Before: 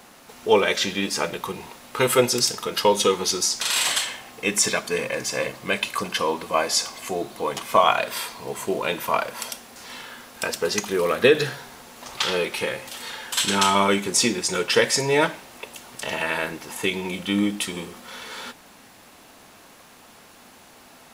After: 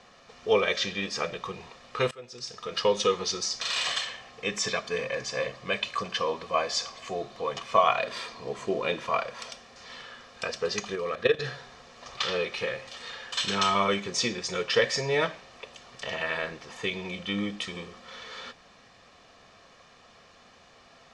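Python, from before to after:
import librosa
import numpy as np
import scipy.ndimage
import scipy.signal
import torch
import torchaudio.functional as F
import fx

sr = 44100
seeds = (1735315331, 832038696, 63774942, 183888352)

y = fx.peak_eq(x, sr, hz=290.0, db=7.5, octaves=0.99, at=(8.03, 9.07))
y = fx.level_steps(y, sr, step_db=13, at=(10.95, 11.45))
y = fx.edit(y, sr, fx.fade_in_from(start_s=2.11, length_s=0.66, curve='qua', floor_db=-23.5), tone=tone)
y = scipy.signal.sosfilt(scipy.signal.butter(4, 6000.0, 'lowpass', fs=sr, output='sos'), y)
y = fx.notch(y, sr, hz=610.0, q=15.0)
y = y + 0.51 * np.pad(y, (int(1.7 * sr / 1000.0), 0))[:len(y)]
y = y * 10.0 ** (-6.0 / 20.0)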